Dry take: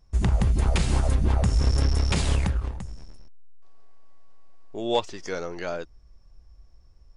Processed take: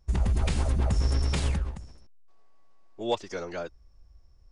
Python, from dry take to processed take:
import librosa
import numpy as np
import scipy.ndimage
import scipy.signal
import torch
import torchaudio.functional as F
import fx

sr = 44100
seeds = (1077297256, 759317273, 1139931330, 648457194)

y = fx.stretch_vocoder(x, sr, factor=0.63)
y = y * 10.0 ** (-2.5 / 20.0)